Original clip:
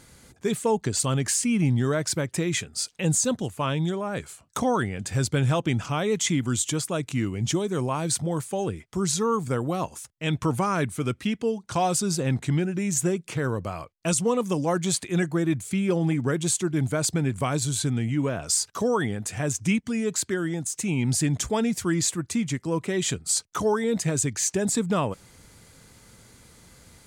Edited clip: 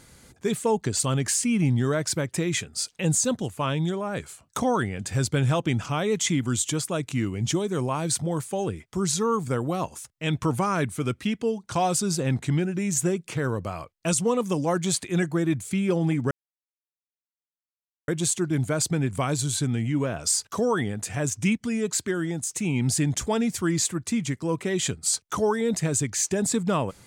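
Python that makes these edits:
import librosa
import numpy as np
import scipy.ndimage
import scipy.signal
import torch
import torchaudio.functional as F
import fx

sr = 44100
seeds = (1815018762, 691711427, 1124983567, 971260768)

y = fx.edit(x, sr, fx.insert_silence(at_s=16.31, length_s=1.77), tone=tone)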